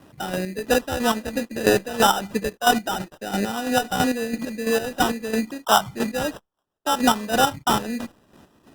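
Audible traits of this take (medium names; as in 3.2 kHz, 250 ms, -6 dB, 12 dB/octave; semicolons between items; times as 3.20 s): aliases and images of a low sample rate 2.2 kHz, jitter 0%; chopped level 3 Hz, depth 60%, duty 35%; Opus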